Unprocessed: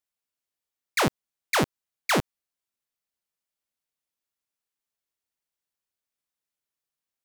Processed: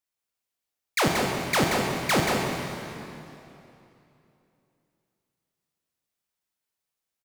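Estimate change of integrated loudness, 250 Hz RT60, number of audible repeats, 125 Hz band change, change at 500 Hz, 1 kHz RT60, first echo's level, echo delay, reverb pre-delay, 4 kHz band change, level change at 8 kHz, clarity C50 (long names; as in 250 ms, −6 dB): +1.5 dB, 3.0 s, 1, +3.5 dB, +4.0 dB, 2.9 s, −5.0 dB, 180 ms, 31 ms, +3.0 dB, +3.0 dB, −0.5 dB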